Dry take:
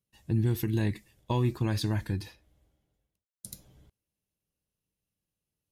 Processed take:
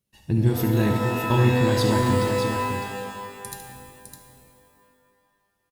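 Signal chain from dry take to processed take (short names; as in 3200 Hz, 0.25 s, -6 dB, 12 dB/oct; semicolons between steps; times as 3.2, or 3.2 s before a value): on a send: tapped delay 71/607 ms -9.5/-7 dB; on the sum: shimmer reverb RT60 1.9 s, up +12 st, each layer -2 dB, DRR 5 dB; gain +5.5 dB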